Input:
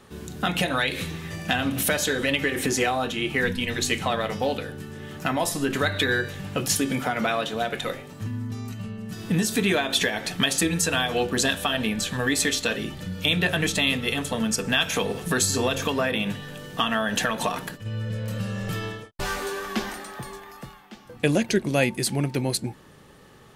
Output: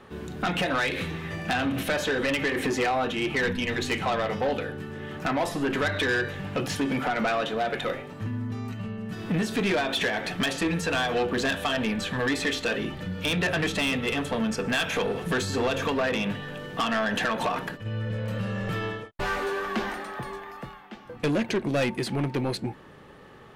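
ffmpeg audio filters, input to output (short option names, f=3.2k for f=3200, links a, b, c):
-filter_complex "[0:a]bass=f=250:g=-4,treble=f=4k:g=-14,acrossover=split=5800[a][b];[b]alimiter=level_in=11.5dB:limit=-24dB:level=0:latency=1:release=132,volume=-11.5dB[c];[a][c]amix=inputs=2:normalize=0,asoftclip=type=tanh:threshold=-24dB,volume=3.5dB"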